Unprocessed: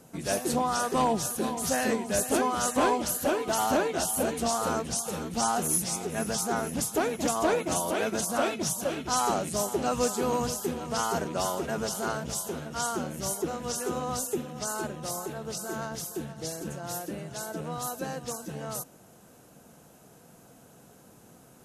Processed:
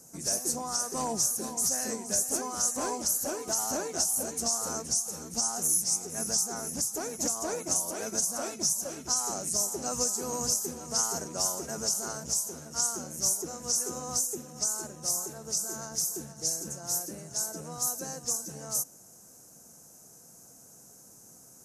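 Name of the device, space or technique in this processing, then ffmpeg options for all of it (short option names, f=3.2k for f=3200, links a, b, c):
over-bright horn tweeter: -af "highshelf=f=4.5k:t=q:w=3:g=10.5,alimiter=limit=-10.5dB:level=0:latency=1:release=435,volume=-6dB"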